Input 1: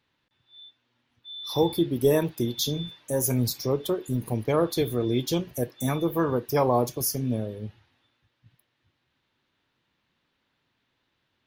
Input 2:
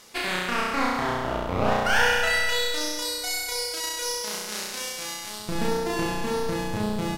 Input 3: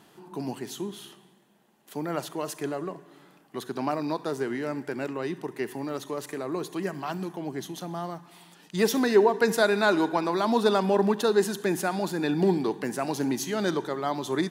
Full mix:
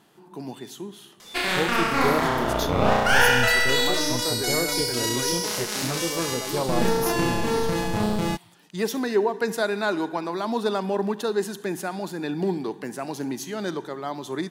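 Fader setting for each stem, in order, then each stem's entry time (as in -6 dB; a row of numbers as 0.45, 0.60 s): -4.5, +3.0, -2.5 dB; 0.00, 1.20, 0.00 s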